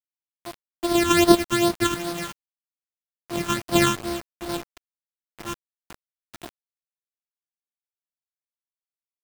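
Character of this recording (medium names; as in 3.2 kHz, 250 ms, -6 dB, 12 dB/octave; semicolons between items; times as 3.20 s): a buzz of ramps at a fixed pitch in blocks of 128 samples; phasing stages 8, 2.5 Hz, lowest notch 600–2400 Hz; a quantiser's noise floor 6-bit, dither none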